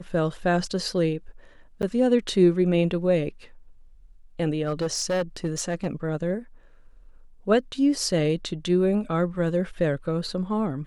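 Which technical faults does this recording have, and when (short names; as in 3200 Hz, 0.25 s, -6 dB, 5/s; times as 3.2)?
1.82–1.83 gap 8.7 ms
4.65–5.87 clipped -21 dBFS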